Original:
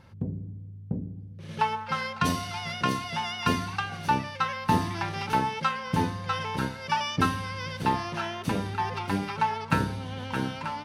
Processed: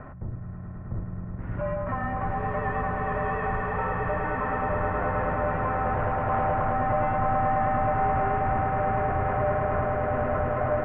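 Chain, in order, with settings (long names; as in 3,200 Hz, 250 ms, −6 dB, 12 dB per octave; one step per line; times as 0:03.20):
in parallel at −2 dB: upward compression, threshold −27 dBFS
on the sum: brickwall limiter −19 dBFS, peak gain reduction 13.5 dB
soft clipping −29 dBFS, distortion −11 dB
single-sideband voice off tune −280 Hz 160–2,000 Hz
on a send: echo that builds up and dies away 106 ms, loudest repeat 8, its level −7.5 dB
0:05.93–0:06.73: on the sum: highs frequency-modulated by the lows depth 0.25 ms
level +3 dB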